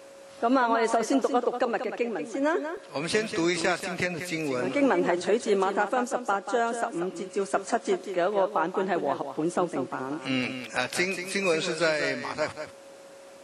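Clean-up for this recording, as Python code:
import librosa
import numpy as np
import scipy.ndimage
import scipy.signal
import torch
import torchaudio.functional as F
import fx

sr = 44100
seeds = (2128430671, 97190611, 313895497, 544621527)

y = fx.notch(x, sr, hz=550.0, q=30.0)
y = fx.fix_interpolate(y, sr, at_s=(2.77,), length_ms=4.2)
y = fx.fix_echo_inverse(y, sr, delay_ms=187, level_db=-9.0)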